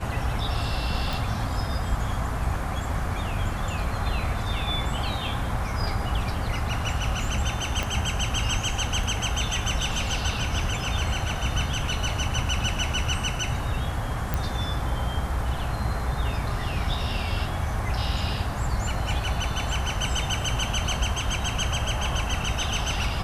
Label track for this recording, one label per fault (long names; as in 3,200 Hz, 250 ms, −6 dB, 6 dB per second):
1.130000	1.130000	click
7.830000	7.830000	click −12 dBFS
14.340000	14.340000	click